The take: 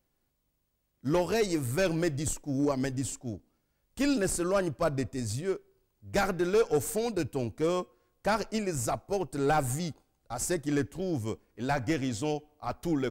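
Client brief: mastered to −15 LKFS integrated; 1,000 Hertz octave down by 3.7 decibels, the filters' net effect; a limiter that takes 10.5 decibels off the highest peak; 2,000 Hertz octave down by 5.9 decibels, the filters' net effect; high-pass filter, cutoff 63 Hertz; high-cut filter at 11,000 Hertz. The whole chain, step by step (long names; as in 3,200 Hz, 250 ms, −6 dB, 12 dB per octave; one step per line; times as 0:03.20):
high-pass filter 63 Hz
low-pass filter 11,000 Hz
parametric band 1,000 Hz −4 dB
parametric band 2,000 Hz −6.5 dB
level +22.5 dB
brickwall limiter −6 dBFS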